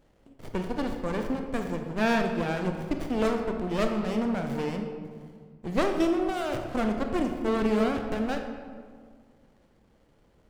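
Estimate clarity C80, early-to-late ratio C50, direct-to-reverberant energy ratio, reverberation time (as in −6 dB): 7.0 dB, 5.5 dB, 4.0 dB, 1.8 s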